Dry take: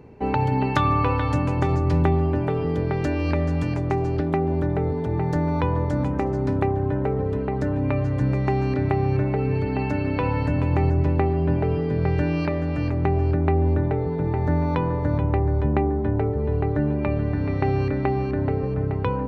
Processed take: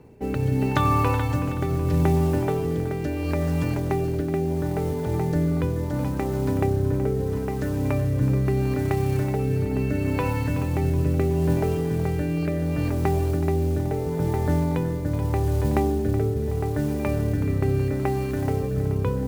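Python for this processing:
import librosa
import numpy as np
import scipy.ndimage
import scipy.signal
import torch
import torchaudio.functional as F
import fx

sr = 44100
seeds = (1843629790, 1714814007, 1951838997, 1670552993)

y = fx.mod_noise(x, sr, seeds[0], snr_db=24)
y = fx.rotary(y, sr, hz=0.75)
y = fx.echo_split(y, sr, split_hz=300.0, low_ms=90, high_ms=374, feedback_pct=52, wet_db=-13)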